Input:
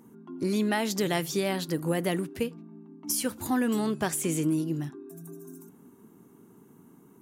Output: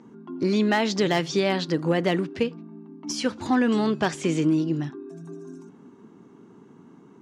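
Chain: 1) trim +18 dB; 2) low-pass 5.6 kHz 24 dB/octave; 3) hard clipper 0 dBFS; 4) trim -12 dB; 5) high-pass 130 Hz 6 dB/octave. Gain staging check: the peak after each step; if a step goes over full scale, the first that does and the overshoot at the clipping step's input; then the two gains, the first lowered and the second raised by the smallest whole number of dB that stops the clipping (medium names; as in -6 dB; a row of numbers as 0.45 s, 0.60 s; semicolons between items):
+5.0 dBFS, +5.0 dBFS, 0.0 dBFS, -12.0 dBFS, -10.0 dBFS; step 1, 5.0 dB; step 1 +13 dB, step 4 -7 dB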